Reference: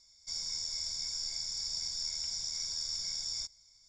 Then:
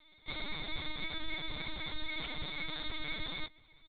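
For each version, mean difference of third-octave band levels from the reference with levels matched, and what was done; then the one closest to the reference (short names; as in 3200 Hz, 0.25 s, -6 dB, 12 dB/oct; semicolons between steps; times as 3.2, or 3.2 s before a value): 17.5 dB: comb 6.8 ms, depth 68%; LPC vocoder at 8 kHz pitch kept; gain +13.5 dB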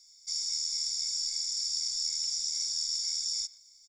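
6.0 dB: pre-emphasis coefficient 0.9; speakerphone echo 0.12 s, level -15 dB; gain +7.5 dB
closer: second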